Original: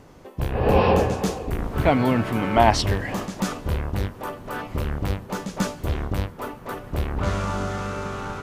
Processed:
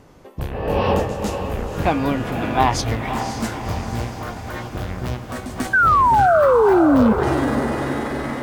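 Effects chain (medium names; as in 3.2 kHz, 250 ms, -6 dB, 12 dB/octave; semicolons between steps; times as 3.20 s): pitch bend over the whole clip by +6.5 st starting unshifted; painted sound fall, 5.73–7.13 s, 210–1600 Hz -14 dBFS; echo that smears into a reverb 539 ms, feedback 58%, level -8 dB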